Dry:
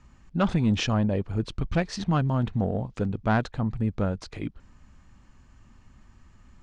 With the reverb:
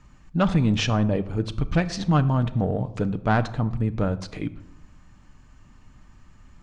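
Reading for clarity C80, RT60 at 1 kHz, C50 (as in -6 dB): 18.5 dB, 0.80 s, 16.5 dB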